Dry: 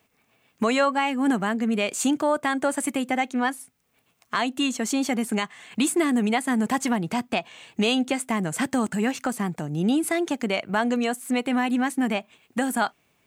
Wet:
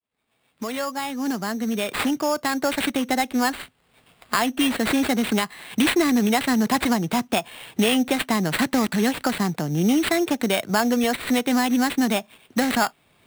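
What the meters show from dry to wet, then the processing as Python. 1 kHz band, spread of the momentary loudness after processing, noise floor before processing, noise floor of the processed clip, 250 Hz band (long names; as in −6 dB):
+1.5 dB, 7 LU, −68 dBFS, −66 dBFS, +2.5 dB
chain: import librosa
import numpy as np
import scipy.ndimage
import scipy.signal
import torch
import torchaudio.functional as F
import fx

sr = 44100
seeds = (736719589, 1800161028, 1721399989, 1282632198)

y = fx.fade_in_head(x, sr, length_s=3.67)
y = fx.dynamic_eq(y, sr, hz=8200.0, q=4.5, threshold_db=-49.0, ratio=4.0, max_db=6)
y = fx.sample_hold(y, sr, seeds[0], rate_hz=6000.0, jitter_pct=0)
y = fx.band_squash(y, sr, depth_pct=40)
y = F.gain(torch.from_numpy(y), 3.0).numpy()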